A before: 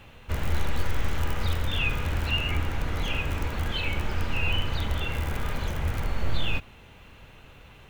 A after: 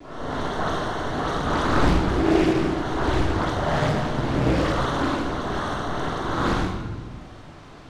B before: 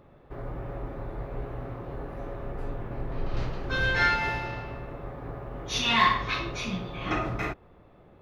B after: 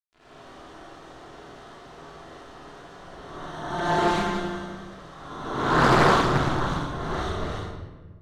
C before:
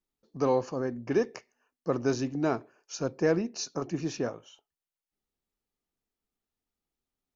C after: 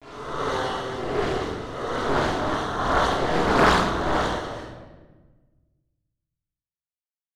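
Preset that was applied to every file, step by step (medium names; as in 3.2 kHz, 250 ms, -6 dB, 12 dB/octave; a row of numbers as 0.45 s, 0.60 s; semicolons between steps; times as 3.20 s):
reverse spectral sustain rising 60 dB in 1.30 s; gate with hold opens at -42 dBFS; differentiator; sample-and-hold 18×; phase dispersion highs, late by 125 ms, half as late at 2 kHz; bit crusher 10-bit; distance through air 95 m; flutter echo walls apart 8.4 m, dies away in 0.29 s; simulated room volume 980 m³, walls mixed, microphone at 3.1 m; loudspeaker Doppler distortion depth 0.6 ms; normalise loudness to -24 LUFS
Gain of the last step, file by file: +8.0 dB, +6.5 dB, +13.5 dB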